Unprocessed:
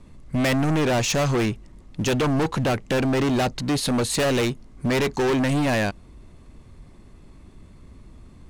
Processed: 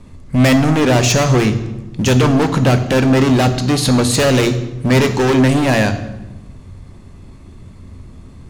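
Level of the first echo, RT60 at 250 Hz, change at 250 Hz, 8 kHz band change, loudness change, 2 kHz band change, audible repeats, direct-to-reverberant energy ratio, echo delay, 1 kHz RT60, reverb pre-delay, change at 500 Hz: none, 1.4 s, +9.5 dB, +8.5 dB, +9.0 dB, +7.5 dB, none, 8.0 dB, none, 1.0 s, 3 ms, +7.5 dB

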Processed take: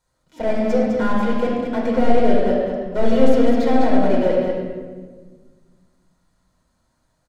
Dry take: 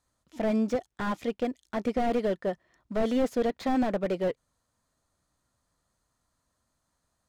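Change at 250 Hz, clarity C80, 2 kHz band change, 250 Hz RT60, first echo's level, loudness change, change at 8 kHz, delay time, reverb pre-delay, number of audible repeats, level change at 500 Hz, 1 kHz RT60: +10.5 dB, 0.0 dB, +9.0 dB, 2.1 s, -5.5 dB, +10.0 dB, n/a, 0.204 s, 6 ms, 1, +11.0 dB, 1.3 s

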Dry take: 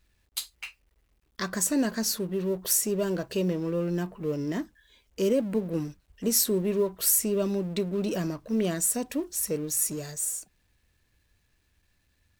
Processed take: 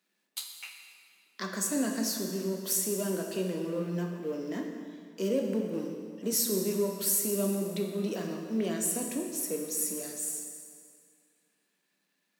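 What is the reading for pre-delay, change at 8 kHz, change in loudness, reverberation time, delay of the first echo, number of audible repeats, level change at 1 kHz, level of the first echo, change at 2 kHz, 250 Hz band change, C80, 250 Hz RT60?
11 ms, -3.5 dB, -4.0 dB, 2.2 s, none, none, -3.0 dB, none, -3.5 dB, -3.5 dB, 5.5 dB, 2.2 s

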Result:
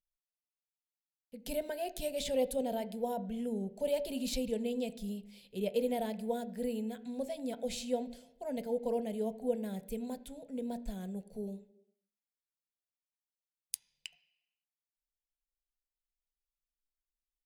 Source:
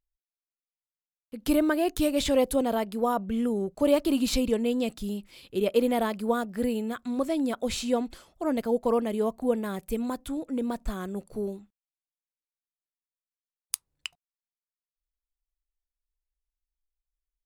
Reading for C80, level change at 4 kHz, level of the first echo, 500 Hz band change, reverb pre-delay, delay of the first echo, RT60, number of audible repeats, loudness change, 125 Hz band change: 19.0 dB, -8.5 dB, none, -8.0 dB, 3 ms, none, 0.85 s, none, -9.0 dB, -6.5 dB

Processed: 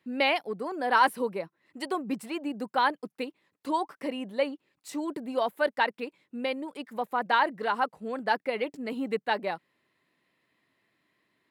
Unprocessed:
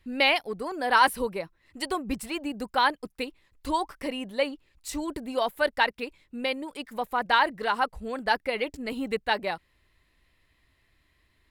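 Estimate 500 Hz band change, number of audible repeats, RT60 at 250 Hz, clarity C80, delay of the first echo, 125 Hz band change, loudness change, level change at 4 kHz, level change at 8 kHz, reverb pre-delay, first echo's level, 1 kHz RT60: -0.5 dB, none, none, none, none, n/a, -2.0 dB, -5.5 dB, -7.5 dB, none, none, none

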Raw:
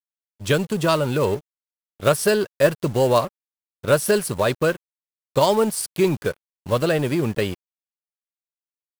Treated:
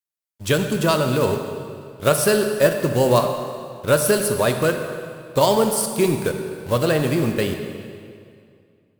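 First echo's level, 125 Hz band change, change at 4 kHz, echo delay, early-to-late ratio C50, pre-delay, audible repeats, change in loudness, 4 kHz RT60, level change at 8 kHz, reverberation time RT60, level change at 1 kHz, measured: none, +1.5 dB, +2.0 dB, none, 6.5 dB, 22 ms, none, +1.0 dB, 1.9 s, +4.0 dB, 2.3 s, +1.5 dB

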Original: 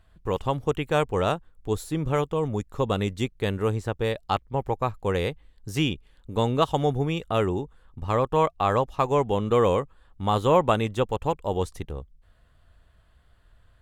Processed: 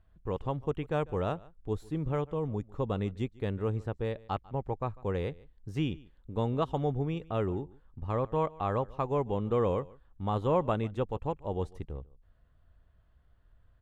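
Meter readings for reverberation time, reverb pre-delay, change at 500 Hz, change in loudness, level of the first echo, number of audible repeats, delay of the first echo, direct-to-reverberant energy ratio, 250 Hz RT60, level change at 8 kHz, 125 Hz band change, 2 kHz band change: none, none, -7.5 dB, -7.5 dB, -22.5 dB, 1, 0.147 s, none, none, under -15 dB, -5.0 dB, -12.0 dB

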